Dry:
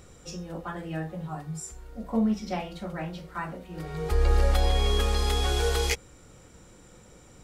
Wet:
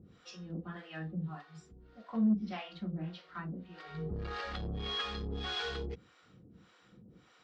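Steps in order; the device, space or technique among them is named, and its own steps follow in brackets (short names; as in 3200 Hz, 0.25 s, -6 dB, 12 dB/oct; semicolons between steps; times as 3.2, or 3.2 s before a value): guitar amplifier with harmonic tremolo (harmonic tremolo 1.7 Hz, depth 100%, crossover 530 Hz; soft clip -24 dBFS, distortion -12 dB; speaker cabinet 110–4300 Hz, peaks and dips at 200 Hz +4 dB, 400 Hz -4 dB, 570 Hz -10 dB, 870 Hz -8 dB, 2300 Hz -4 dB)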